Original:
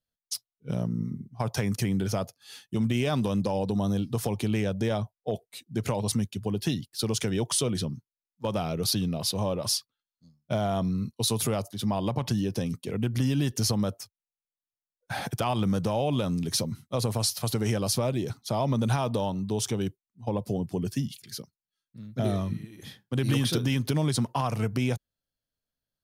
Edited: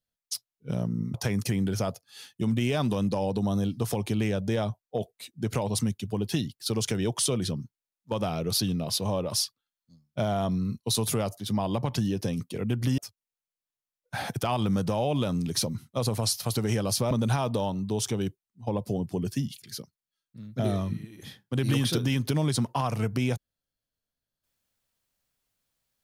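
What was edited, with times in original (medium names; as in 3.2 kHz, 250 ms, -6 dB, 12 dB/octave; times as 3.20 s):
1.14–1.47 s: delete
13.31–13.95 s: delete
18.08–18.71 s: delete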